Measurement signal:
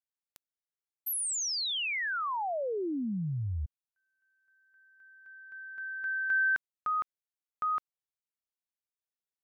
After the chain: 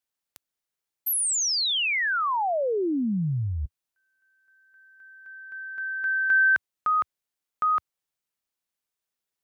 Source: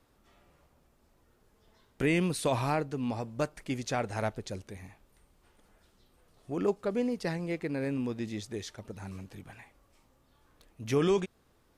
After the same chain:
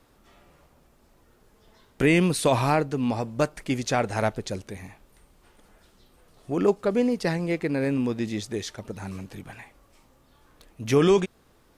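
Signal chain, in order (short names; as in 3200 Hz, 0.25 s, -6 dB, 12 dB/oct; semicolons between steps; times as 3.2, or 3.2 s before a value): bell 85 Hz -3.5 dB 0.66 oct; gain +7.5 dB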